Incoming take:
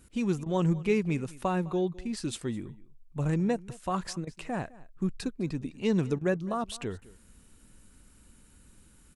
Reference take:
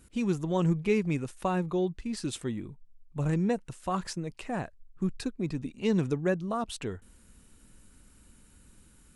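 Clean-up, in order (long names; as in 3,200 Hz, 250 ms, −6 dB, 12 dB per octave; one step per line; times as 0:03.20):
repair the gap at 0:00.44/0:04.25/0:06.19, 20 ms
echo removal 208 ms −21 dB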